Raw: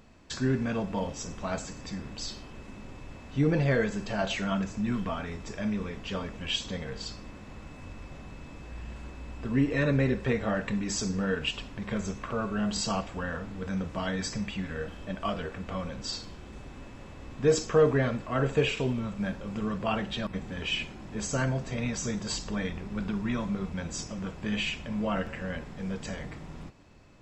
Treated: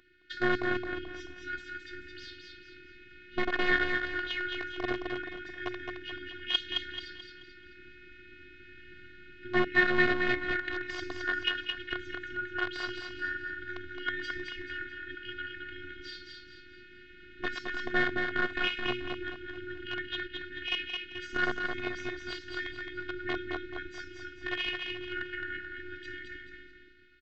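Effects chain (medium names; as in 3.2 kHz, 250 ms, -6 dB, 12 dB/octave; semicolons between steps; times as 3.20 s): tracing distortion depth 0.052 ms; FFT band-reject 290–1400 Hz; in parallel at -3.5 dB: bit crusher 4-bit; on the sum: cabinet simulation 180–3300 Hz, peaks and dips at 200 Hz -3 dB, 290 Hz -9 dB, 810 Hz -5 dB, 1.5 kHz +4 dB, 2.5 kHz -8 dB; on a send: feedback delay 217 ms, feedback 38%, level -4.5 dB; on the sum: robot voice 360 Hz; trim +4.5 dB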